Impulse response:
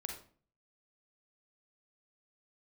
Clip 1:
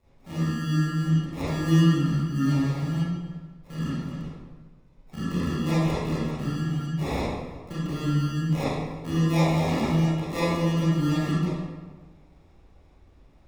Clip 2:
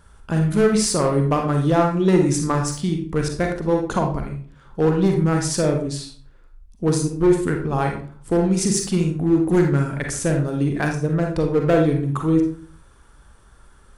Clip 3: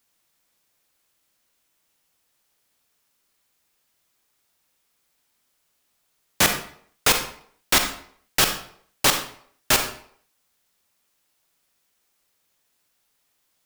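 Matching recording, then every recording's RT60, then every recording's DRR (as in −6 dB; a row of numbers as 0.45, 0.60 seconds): 2; 1.4, 0.45, 0.60 seconds; −12.0, 2.0, 6.0 decibels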